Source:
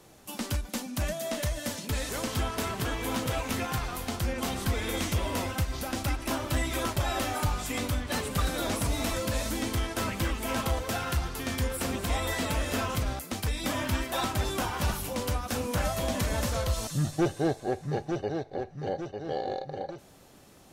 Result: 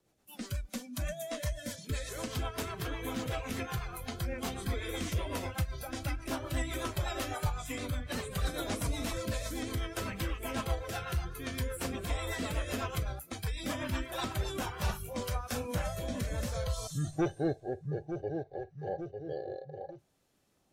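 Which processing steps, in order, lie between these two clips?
spectral noise reduction 14 dB; rotary cabinet horn 8 Hz, later 0.6 Hz, at 14.30 s; trim -3 dB

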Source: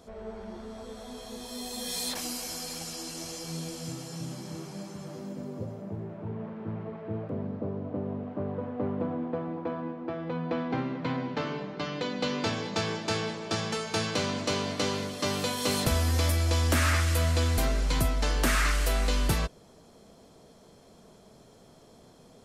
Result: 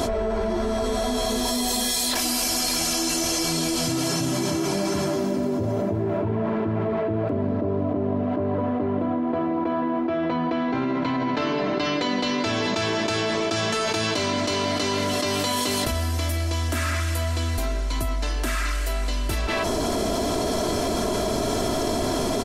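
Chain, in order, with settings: comb 3 ms, depth 61%; speakerphone echo 170 ms, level -13 dB; level flattener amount 100%; trim -4.5 dB

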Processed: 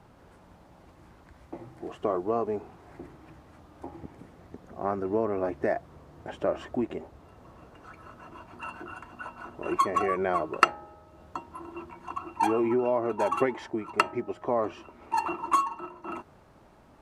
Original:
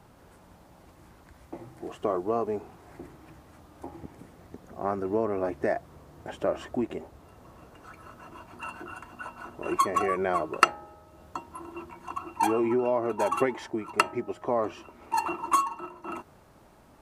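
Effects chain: treble shelf 7.3 kHz -11.5 dB

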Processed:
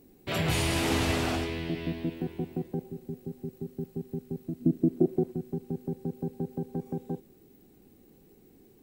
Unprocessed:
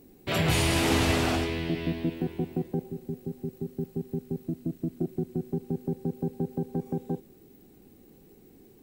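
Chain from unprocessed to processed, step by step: 4.60–5.31 s: peaking EQ 220 Hz -> 660 Hz +12 dB 2.2 oct; trim -3 dB

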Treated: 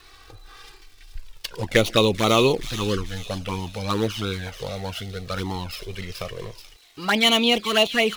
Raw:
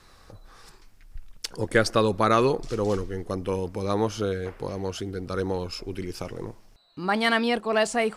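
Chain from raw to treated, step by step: dead-time distortion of 0.06 ms; peaking EQ 3.1 kHz +11.5 dB 1.6 oct; crackle 250 per s -44 dBFS; touch-sensitive flanger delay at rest 2.8 ms, full sweep at -16 dBFS; feedback echo behind a high-pass 431 ms, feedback 45%, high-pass 3.6 kHz, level -6.5 dB; trim +3.5 dB

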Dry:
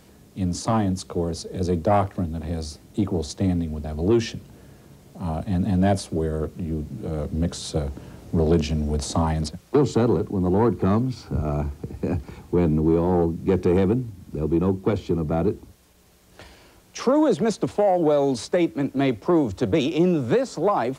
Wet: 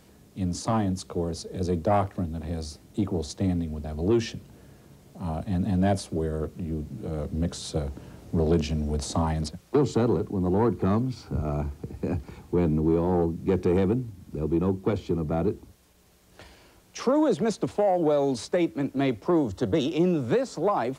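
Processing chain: 19.36–19.93 s: Butterworth band-stop 2.4 kHz, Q 5.8; trim -3.5 dB

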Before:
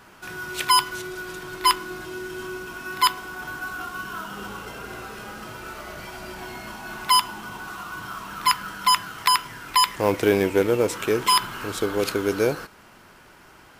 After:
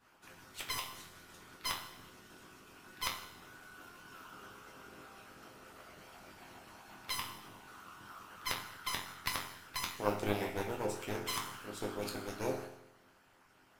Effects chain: Chebyshev shaper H 4 -10 dB, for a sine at -2 dBFS; chord resonator F2 minor, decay 0.84 s; harmonic-percussive split harmonic -17 dB; trim +8.5 dB

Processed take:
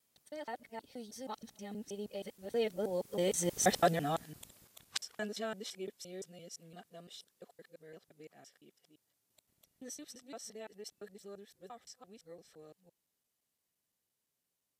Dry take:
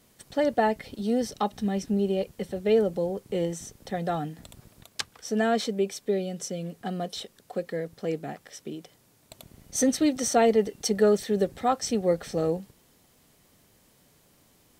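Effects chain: time reversed locally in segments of 165 ms; Doppler pass-by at 3.68 s, 13 m/s, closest 2.7 m; tilt EQ +2 dB/octave; trim +5.5 dB

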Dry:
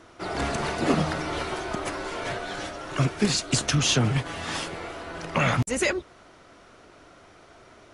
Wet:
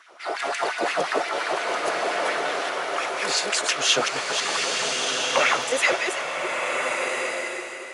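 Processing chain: chunks repeated in reverse 259 ms, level -4.5 dB; LFO high-pass sine 5.7 Hz 460–2300 Hz; swelling reverb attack 1400 ms, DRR 1.5 dB

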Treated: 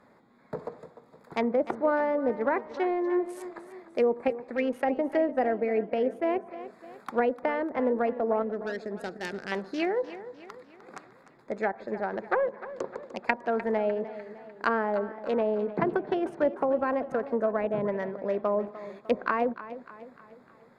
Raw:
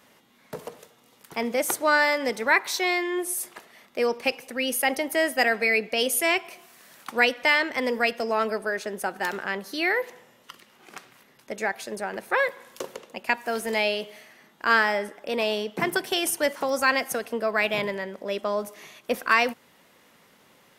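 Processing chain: local Wiener filter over 15 samples; 8.42–9.52 s: peaking EQ 980 Hz -14.5 dB 1.6 oct; 11.62–13.03 s: low-pass 3.2 kHz 6 dB/octave; low-pass that closes with the level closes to 680 Hz, closed at -22 dBFS; modulated delay 301 ms, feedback 49%, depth 59 cents, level -14.5 dB; trim +1.5 dB

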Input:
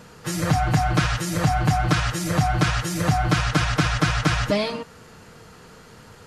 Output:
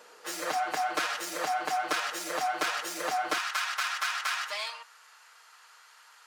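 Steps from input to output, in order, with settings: tracing distortion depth 0.051 ms; high-pass 400 Hz 24 dB/octave, from 3.38 s 940 Hz; trim -5 dB

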